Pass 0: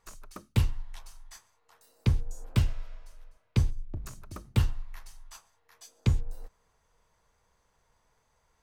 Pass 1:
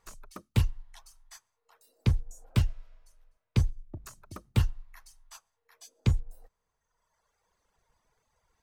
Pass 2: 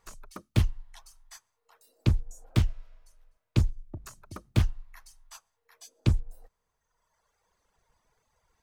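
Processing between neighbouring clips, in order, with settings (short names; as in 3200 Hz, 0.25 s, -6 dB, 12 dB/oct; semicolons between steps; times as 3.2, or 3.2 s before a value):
reverb removal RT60 1.6 s
Doppler distortion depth 0.94 ms; gain +1.5 dB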